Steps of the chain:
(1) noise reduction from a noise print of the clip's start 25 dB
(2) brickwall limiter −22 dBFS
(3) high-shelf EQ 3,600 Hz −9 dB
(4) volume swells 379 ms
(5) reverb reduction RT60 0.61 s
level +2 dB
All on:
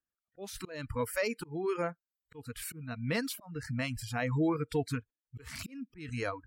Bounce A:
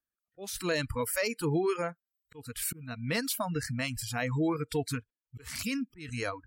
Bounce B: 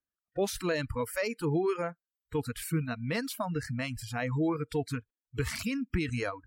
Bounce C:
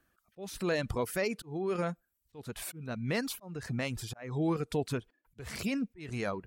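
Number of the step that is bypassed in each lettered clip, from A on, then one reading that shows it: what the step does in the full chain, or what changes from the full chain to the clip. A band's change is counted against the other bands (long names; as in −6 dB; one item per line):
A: 3, 8 kHz band +5.5 dB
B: 4, change in crest factor −3.0 dB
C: 1, change in momentary loudness spread −2 LU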